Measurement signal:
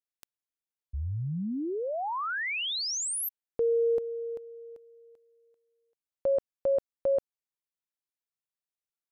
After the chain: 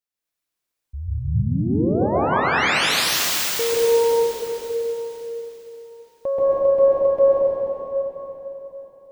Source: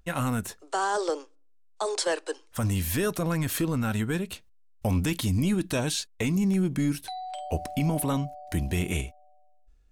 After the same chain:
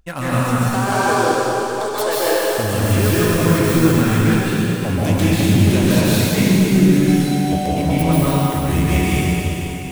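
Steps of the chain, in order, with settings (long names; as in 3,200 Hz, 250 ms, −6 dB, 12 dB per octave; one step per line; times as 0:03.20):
phase distortion by the signal itself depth 0.062 ms
dense smooth reverb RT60 3.9 s, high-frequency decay 1×, pre-delay 120 ms, DRR −10 dB
level +2.5 dB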